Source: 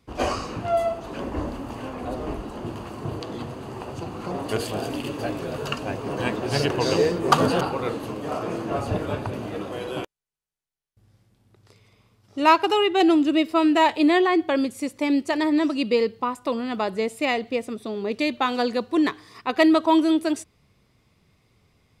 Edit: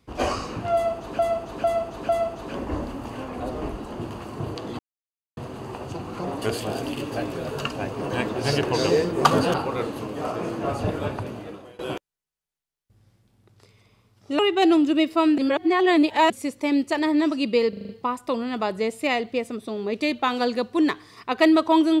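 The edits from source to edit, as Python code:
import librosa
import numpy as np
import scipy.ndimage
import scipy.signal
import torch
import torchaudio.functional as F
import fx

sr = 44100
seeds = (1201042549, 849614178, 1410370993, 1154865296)

y = fx.edit(x, sr, fx.repeat(start_s=0.74, length_s=0.45, count=4),
    fx.insert_silence(at_s=3.44, length_s=0.58),
    fx.fade_out_to(start_s=9.18, length_s=0.68, floor_db=-21.5),
    fx.cut(start_s=12.46, length_s=0.31),
    fx.reverse_span(start_s=13.76, length_s=0.92),
    fx.stutter(start_s=16.07, slice_s=0.04, count=6), tone=tone)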